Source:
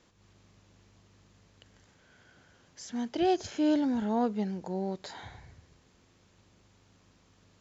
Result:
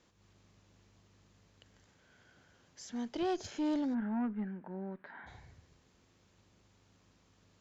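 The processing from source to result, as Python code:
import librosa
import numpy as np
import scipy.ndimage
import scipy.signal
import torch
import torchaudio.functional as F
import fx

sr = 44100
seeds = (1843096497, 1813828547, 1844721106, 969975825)

y = fx.cabinet(x, sr, low_hz=210.0, low_slope=12, high_hz=2100.0, hz=(230.0, 330.0, 480.0, 750.0, 1600.0), db=(6, -5, -10, -6, 7), at=(3.93, 5.26), fade=0.02)
y = fx.tube_stage(y, sr, drive_db=23.0, bias=0.2)
y = y * 10.0 ** (-4.0 / 20.0)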